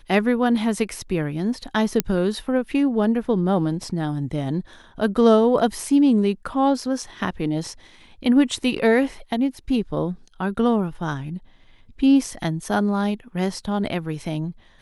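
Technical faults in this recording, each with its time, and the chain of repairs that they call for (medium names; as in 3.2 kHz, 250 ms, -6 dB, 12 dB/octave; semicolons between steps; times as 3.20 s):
2.00 s: pop -3 dBFS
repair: de-click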